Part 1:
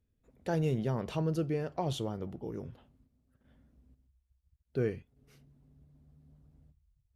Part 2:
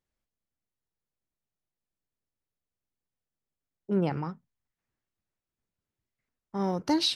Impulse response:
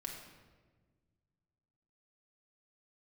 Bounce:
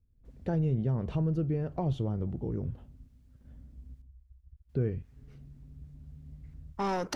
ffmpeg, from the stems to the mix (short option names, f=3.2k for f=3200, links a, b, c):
-filter_complex "[0:a]aemphasis=mode=reproduction:type=riaa,dynaudnorm=f=120:g=3:m=8dB,volume=-8dB[a];[1:a]asplit=2[b][c];[c]highpass=f=720:p=1,volume=20dB,asoftclip=type=tanh:threshold=-17dB[d];[b][d]amix=inputs=2:normalize=0,lowpass=f=6.9k:p=1,volume=-6dB,adelay=250,volume=-1.5dB,asplit=3[e][f][g];[e]atrim=end=4.02,asetpts=PTS-STARTPTS,afade=t=out:st=4.016:d=0.004:c=hsin[h];[f]atrim=start=4.02:end=4.69,asetpts=PTS-STARTPTS,volume=0[i];[g]atrim=start=4.69,asetpts=PTS-STARTPTS,afade=t=in:d=0.004:c=hsin[j];[h][i][j]concat=n=3:v=0:a=1[k];[a][k]amix=inputs=2:normalize=0,acompressor=threshold=-30dB:ratio=2"